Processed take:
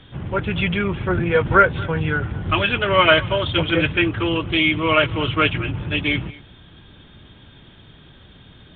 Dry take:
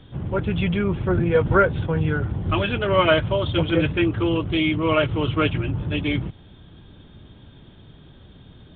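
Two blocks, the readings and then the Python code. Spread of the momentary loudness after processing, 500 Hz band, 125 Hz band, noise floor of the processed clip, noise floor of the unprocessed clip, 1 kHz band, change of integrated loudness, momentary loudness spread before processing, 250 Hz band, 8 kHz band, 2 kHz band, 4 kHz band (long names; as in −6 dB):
9 LU, +0.5 dB, −1.0 dB, −47 dBFS, −48 dBFS, +5.0 dB, +2.5 dB, 7 LU, −0.5 dB, can't be measured, +7.0 dB, +6.5 dB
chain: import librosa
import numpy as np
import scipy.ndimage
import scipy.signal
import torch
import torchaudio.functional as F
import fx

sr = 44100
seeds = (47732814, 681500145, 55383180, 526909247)

p1 = fx.peak_eq(x, sr, hz=2200.0, db=9.0, octaves=2.3)
p2 = p1 + fx.echo_single(p1, sr, ms=226, db=-21.5, dry=0)
y = p2 * librosa.db_to_amplitude(-1.0)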